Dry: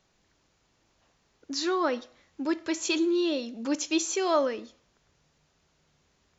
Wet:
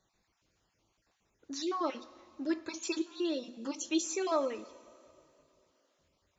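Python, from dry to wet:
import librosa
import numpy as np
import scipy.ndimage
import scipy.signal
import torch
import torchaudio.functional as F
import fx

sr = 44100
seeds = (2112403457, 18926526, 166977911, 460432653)

y = fx.spec_dropout(x, sr, seeds[0], share_pct=30)
y = fx.rev_double_slope(y, sr, seeds[1], early_s=0.21, late_s=3.0, knee_db=-18, drr_db=11.0)
y = y * librosa.db_to_amplitude(-6.0)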